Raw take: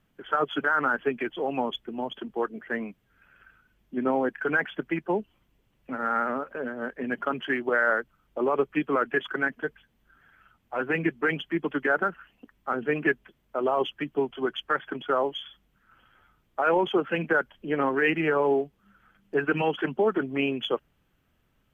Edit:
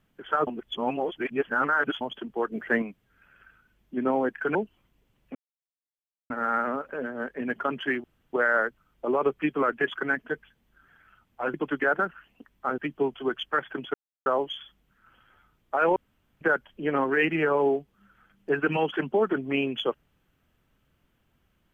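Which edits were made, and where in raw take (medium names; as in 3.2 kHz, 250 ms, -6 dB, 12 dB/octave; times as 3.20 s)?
0.47–2.01 s: reverse
2.52–2.82 s: gain +6 dB
4.55–5.12 s: delete
5.92 s: insert silence 0.95 s
7.66 s: insert room tone 0.29 s
10.87–11.57 s: delete
12.81–13.95 s: delete
15.11 s: insert silence 0.32 s
16.81–17.26 s: room tone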